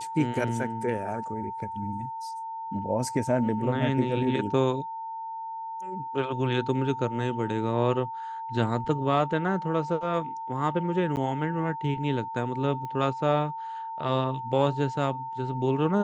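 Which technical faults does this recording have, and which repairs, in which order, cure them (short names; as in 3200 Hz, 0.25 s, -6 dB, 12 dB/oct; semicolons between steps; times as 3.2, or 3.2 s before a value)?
tone 900 Hz -33 dBFS
11.16–11.17 gap 9.5 ms
12.85 pop -25 dBFS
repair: de-click; notch 900 Hz, Q 30; interpolate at 11.16, 9.5 ms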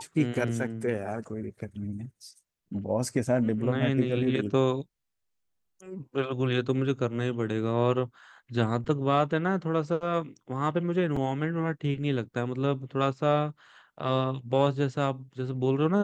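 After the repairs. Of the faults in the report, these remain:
none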